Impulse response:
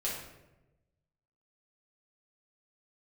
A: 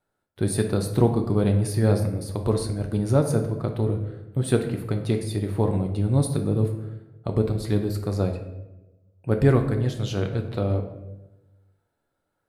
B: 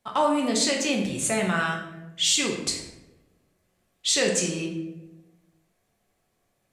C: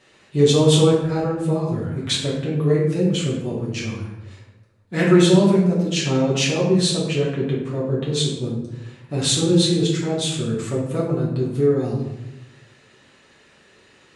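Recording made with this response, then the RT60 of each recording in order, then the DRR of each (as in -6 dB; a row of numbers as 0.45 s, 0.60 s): C; 1.0 s, 1.0 s, 1.0 s; 4.0 dB, -1.0 dB, -7.0 dB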